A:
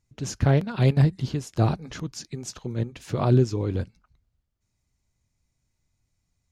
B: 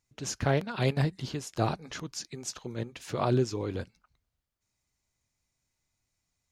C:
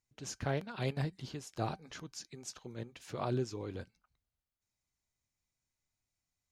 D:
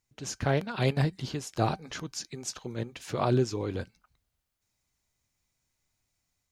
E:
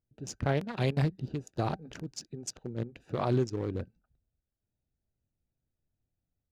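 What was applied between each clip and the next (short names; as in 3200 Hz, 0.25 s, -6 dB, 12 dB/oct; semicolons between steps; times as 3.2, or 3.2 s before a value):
low shelf 290 Hz -11.5 dB
resonator 770 Hz, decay 0.16 s, harmonics all, mix 40%; gain -4 dB
AGC gain up to 3 dB; gain +6 dB
Wiener smoothing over 41 samples; limiter -18 dBFS, peak gain reduction 6.5 dB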